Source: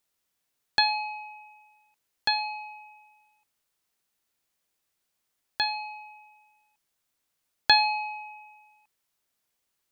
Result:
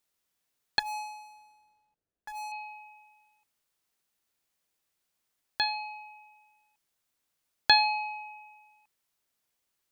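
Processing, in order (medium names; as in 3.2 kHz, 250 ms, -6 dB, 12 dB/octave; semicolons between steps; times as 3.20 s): 0.79–2.52 s: median filter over 41 samples; trim -1.5 dB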